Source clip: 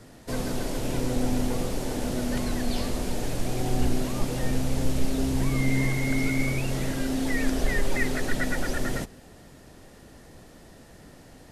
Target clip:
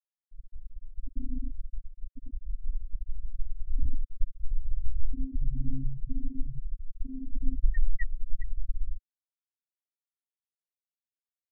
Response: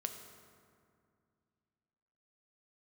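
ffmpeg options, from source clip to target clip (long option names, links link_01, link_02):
-af "afftfilt=real='re*gte(hypot(re,im),0.447)':imag='im*gte(hypot(re,im),0.447)':win_size=1024:overlap=0.75,asubboost=boost=3:cutoff=78,volume=-7dB"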